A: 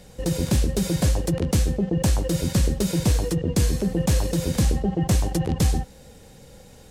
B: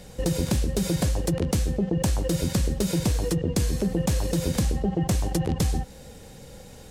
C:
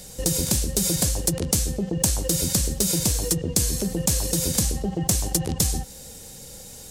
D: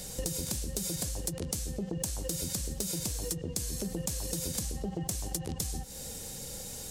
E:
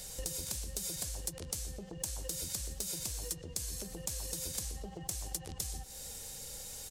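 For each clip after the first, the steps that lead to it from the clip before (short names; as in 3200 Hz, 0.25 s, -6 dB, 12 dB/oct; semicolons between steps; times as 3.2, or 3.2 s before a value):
compressor, threshold -23 dBFS, peak gain reduction 7.5 dB; gain +2.5 dB
tone controls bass 0 dB, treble +15 dB; gain -1.5 dB
compressor 6:1, threshold -32 dBFS, peak gain reduction 15.5 dB
bell 220 Hz -9.5 dB 2.4 oct; speakerphone echo 0.12 s, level -12 dB; gain -3 dB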